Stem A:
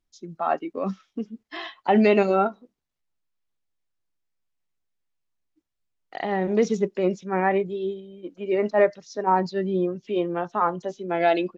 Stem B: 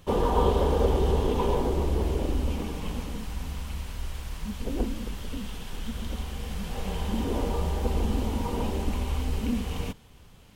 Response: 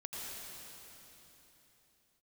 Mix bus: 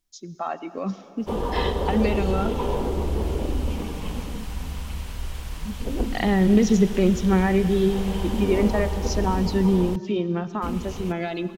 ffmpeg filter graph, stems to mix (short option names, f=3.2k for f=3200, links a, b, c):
-filter_complex "[0:a]highshelf=f=3.8k:g=11.5,acompressor=threshold=-24dB:ratio=6,asubboost=boost=5.5:cutoff=230,volume=-1.5dB,asplit=2[a][b];[b]volume=-11.5dB[c];[1:a]adelay=1200,volume=-3dB,asplit=3[d][e][f];[d]atrim=end=9.96,asetpts=PTS-STARTPTS,afade=t=out:st=9.956:d=0.004:c=hsin[g];[e]atrim=start=9.96:end=10.62,asetpts=PTS-STARTPTS,volume=0[h];[f]atrim=start=10.62,asetpts=PTS-STARTPTS,afade=t=in:d=0.004:c=hsin[i];[g][h][i]concat=n=3:v=0:a=1[j];[2:a]atrim=start_sample=2205[k];[c][k]afir=irnorm=-1:irlink=0[l];[a][j][l]amix=inputs=3:normalize=0,dynaudnorm=f=270:g=21:m=6dB"